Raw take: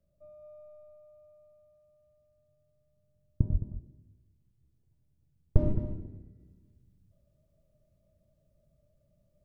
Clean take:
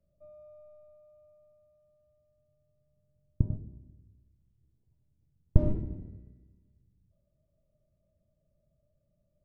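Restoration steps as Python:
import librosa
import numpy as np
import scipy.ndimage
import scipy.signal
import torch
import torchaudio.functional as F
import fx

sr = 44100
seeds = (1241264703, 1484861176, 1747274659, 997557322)

y = fx.fix_declip(x, sr, threshold_db=-7.0)
y = fx.fix_deplosive(y, sr, at_s=(3.51,))
y = fx.fix_echo_inverse(y, sr, delay_ms=215, level_db=-11.5)
y = fx.gain(y, sr, db=fx.steps((0.0, 0.0), (6.4, -4.5)))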